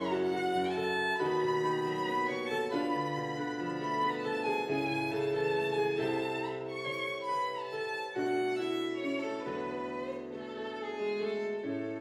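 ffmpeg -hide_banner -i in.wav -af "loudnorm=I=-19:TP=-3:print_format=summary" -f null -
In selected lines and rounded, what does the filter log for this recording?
Input Integrated:    -33.8 LUFS
Input True Peak:     -19.9 dBTP
Input LRA:             4.1 LU
Input Threshold:     -43.8 LUFS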